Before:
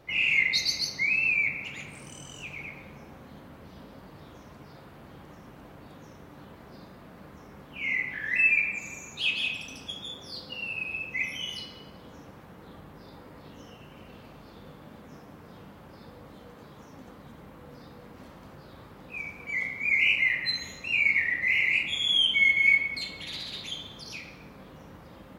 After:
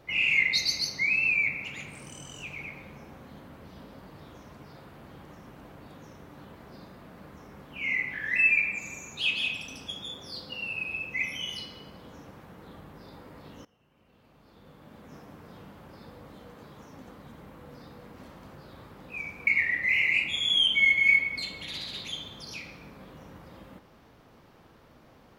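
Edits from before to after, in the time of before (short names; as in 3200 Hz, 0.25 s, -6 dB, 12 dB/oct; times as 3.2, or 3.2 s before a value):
13.65–15.17 fade in quadratic, from -20.5 dB
19.47–21.06 cut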